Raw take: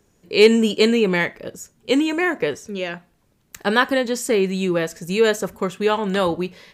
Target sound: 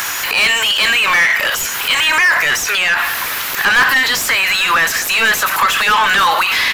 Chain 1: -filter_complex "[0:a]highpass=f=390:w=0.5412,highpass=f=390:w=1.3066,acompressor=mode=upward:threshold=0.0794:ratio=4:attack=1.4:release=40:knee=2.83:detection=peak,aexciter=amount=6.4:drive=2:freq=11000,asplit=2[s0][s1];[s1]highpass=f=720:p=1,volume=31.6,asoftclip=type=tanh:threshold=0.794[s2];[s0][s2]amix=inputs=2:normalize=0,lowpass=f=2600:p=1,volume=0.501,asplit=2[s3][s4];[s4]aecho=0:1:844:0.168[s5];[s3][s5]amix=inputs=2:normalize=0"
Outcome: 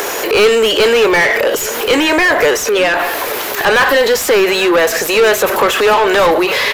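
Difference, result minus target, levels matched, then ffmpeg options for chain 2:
500 Hz band +17.5 dB
-filter_complex "[0:a]highpass=f=1100:w=0.5412,highpass=f=1100:w=1.3066,acompressor=mode=upward:threshold=0.0794:ratio=4:attack=1.4:release=40:knee=2.83:detection=peak,aexciter=amount=6.4:drive=2:freq=11000,asplit=2[s0][s1];[s1]highpass=f=720:p=1,volume=31.6,asoftclip=type=tanh:threshold=0.794[s2];[s0][s2]amix=inputs=2:normalize=0,lowpass=f=2600:p=1,volume=0.501,asplit=2[s3][s4];[s4]aecho=0:1:844:0.168[s5];[s3][s5]amix=inputs=2:normalize=0"

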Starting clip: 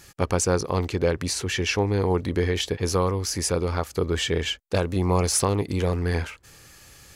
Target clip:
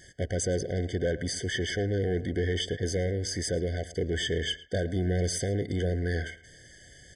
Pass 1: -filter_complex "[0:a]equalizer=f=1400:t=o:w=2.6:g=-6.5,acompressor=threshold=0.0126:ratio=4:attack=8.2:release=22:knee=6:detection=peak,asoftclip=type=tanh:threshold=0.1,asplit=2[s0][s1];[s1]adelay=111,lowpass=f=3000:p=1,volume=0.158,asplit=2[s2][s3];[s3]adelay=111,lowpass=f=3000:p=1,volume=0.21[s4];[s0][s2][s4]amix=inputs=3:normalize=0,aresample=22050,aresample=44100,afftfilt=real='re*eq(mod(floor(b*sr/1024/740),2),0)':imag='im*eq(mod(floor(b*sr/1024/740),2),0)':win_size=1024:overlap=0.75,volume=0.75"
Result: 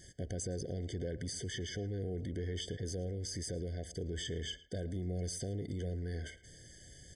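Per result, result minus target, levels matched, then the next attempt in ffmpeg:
compression: peak gain reduction +14.5 dB; 1 kHz band -3.5 dB
-filter_complex "[0:a]equalizer=f=1400:t=o:w=2.6:g=-6.5,asoftclip=type=tanh:threshold=0.1,asplit=2[s0][s1];[s1]adelay=111,lowpass=f=3000:p=1,volume=0.158,asplit=2[s2][s3];[s3]adelay=111,lowpass=f=3000:p=1,volume=0.21[s4];[s0][s2][s4]amix=inputs=3:normalize=0,aresample=22050,aresample=44100,afftfilt=real='re*eq(mod(floor(b*sr/1024/740),2),0)':imag='im*eq(mod(floor(b*sr/1024/740),2),0)':win_size=1024:overlap=0.75,volume=0.75"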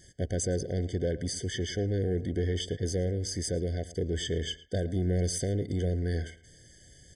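1 kHz band -3.0 dB
-filter_complex "[0:a]equalizer=f=1400:t=o:w=2.6:g=4,asoftclip=type=tanh:threshold=0.1,asplit=2[s0][s1];[s1]adelay=111,lowpass=f=3000:p=1,volume=0.158,asplit=2[s2][s3];[s3]adelay=111,lowpass=f=3000:p=1,volume=0.21[s4];[s0][s2][s4]amix=inputs=3:normalize=0,aresample=22050,aresample=44100,afftfilt=real='re*eq(mod(floor(b*sr/1024/740),2),0)':imag='im*eq(mod(floor(b*sr/1024/740),2),0)':win_size=1024:overlap=0.75,volume=0.75"

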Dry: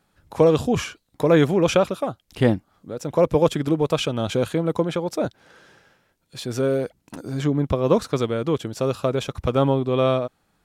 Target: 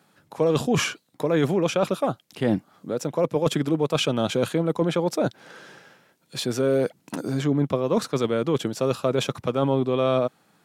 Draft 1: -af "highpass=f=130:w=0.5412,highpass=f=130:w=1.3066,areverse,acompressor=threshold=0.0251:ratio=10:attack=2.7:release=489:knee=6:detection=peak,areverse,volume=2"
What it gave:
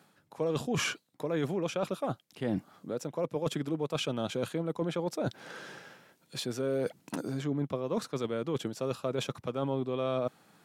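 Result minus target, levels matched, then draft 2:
compression: peak gain reduction +10 dB
-af "highpass=f=130:w=0.5412,highpass=f=130:w=1.3066,areverse,acompressor=threshold=0.0891:ratio=10:attack=2.7:release=489:knee=6:detection=peak,areverse,volume=2"

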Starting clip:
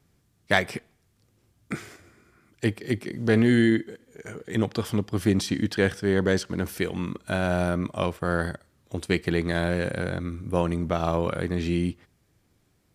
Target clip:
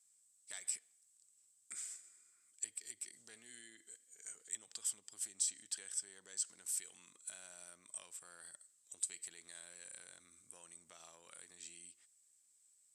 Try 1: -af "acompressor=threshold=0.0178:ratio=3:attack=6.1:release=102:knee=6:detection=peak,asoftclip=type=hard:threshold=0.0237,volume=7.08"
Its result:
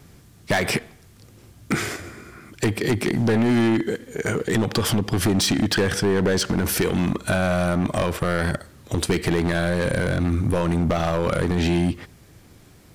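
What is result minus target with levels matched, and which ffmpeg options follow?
8 kHz band -13.5 dB
-af "acompressor=threshold=0.0178:ratio=3:attack=6.1:release=102:knee=6:detection=peak,bandpass=f=8000:t=q:w=12:csg=0,asoftclip=type=hard:threshold=0.0237,volume=7.08"

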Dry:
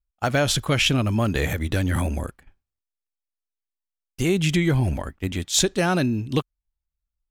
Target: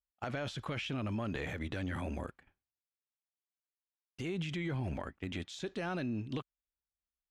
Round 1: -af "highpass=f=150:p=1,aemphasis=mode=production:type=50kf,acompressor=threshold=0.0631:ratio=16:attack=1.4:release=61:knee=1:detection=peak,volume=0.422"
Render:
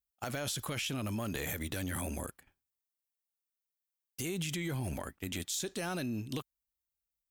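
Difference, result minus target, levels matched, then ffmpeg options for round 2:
4 kHz band +3.5 dB
-af "highpass=f=150:p=1,aemphasis=mode=production:type=50kf,acompressor=threshold=0.0631:ratio=16:attack=1.4:release=61:knee=1:detection=peak,lowpass=2900,volume=0.422"

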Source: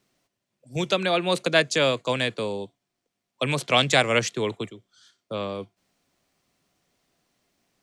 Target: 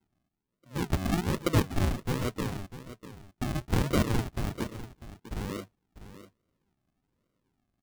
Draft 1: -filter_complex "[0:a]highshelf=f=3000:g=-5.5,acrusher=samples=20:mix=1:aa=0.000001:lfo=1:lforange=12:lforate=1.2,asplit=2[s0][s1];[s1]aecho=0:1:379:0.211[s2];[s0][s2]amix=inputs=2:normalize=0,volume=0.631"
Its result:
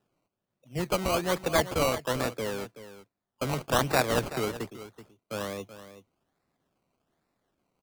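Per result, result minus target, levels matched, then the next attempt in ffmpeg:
decimation with a swept rate: distortion -25 dB; echo 268 ms early
-filter_complex "[0:a]highshelf=f=3000:g=-5.5,acrusher=samples=73:mix=1:aa=0.000001:lfo=1:lforange=43.8:lforate=1.2,asplit=2[s0][s1];[s1]aecho=0:1:379:0.211[s2];[s0][s2]amix=inputs=2:normalize=0,volume=0.631"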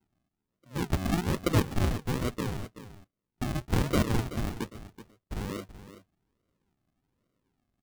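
echo 268 ms early
-filter_complex "[0:a]highshelf=f=3000:g=-5.5,acrusher=samples=73:mix=1:aa=0.000001:lfo=1:lforange=43.8:lforate=1.2,asplit=2[s0][s1];[s1]aecho=0:1:647:0.211[s2];[s0][s2]amix=inputs=2:normalize=0,volume=0.631"

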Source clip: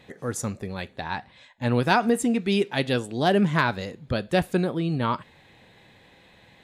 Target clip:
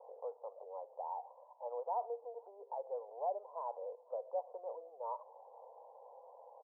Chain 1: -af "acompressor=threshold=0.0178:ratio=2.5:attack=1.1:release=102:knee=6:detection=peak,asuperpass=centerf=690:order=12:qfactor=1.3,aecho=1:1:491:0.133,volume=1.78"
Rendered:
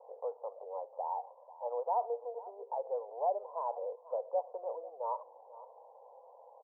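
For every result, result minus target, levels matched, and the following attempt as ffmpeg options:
echo-to-direct +10 dB; compression: peak gain reduction -5.5 dB
-af "acompressor=threshold=0.0178:ratio=2.5:attack=1.1:release=102:knee=6:detection=peak,asuperpass=centerf=690:order=12:qfactor=1.3,aecho=1:1:491:0.0422,volume=1.78"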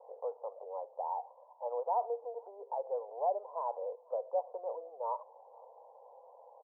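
compression: peak gain reduction -5.5 dB
-af "acompressor=threshold=0.00631:ratio=2.5:attack=1.1:release=102:knee=6:detection=peak,asuperpass=centerf=690:order=12:qfactor=1.3,aecho=1:1:491:0.0422,volume=1.78"

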